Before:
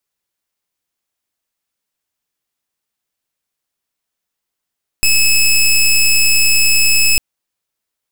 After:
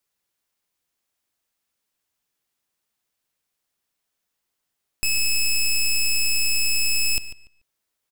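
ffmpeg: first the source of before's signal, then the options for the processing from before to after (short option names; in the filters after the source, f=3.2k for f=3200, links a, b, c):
-f lavfi -i "aevalsrc='0.299*(2*lt(mod(2590*t,1),0.16)-1)':d=2.15:s=44100"
-filter_complex "[0:a]alimiter=limit=-20.5dB:level=0:latency=1,asplit=2[a][b];[b]adelay=145,lowpass=f=4.5k:p=1,volume=-12dB,asplit=2[c][d];[d]adelay=145,lowpass=f=4.5k:p=1,volume=0.23,asplit=2[e][f];[f]adelay=145,lowpass=f=4.5k:p=1,volume=0.23[g];[a][c][e][g]amix=inputs=4:normalize=0"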